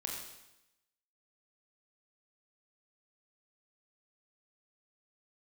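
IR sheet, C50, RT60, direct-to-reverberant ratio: 2.0 dB, 0.90 s, -1.0 dB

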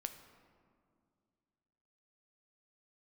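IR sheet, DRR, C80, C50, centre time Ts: 7.5 dB, 11.0 dB, 9.5 dB, 19 ms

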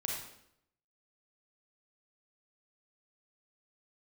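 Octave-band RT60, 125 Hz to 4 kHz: 0.85, 0.80, 0.80, 0.70, 0.65, 0.65 s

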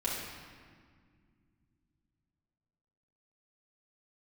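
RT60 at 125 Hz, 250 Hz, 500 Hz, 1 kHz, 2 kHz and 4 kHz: 4.1, 3.5, 2.0, 1.8, 1.7, 1.3 s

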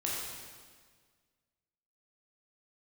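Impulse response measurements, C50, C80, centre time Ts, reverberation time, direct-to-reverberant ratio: -1.0 dB, 1.0 dB, 0.101 s, 1.6 s, -5.5 dB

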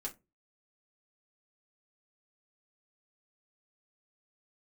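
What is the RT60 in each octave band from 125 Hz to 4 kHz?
0.40, 0.35, 0.25, 0.20, 0.15, 0.15 s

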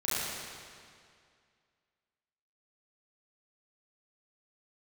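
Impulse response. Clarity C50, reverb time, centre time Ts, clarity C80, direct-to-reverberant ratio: -4.5 dB, 2.2 s, 0.166 s, -2.5 dB, -11.5 dB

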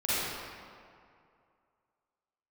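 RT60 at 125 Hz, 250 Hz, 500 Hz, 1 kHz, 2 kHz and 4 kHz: 2.4, 2.2, 2.3, 2.4, 1.9, 1.4 s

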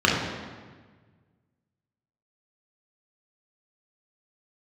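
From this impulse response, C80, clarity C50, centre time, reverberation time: 4.0 dB, 1.5 dB, 70 ms, 1.5 s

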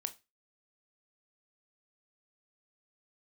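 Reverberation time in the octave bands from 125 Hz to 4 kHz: 0.30, 0.25, 0.25, 0.25, 0.25, 0.25 s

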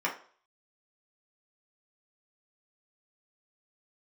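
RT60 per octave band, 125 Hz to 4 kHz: 0.30, 0.40, 0.45, 0.45, 0.40, 0.45 s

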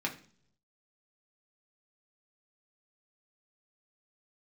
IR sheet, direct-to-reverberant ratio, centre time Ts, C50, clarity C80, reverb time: -1.0 dB, 12 ms, 12.5 dB, 17.5 dB, 0.55 s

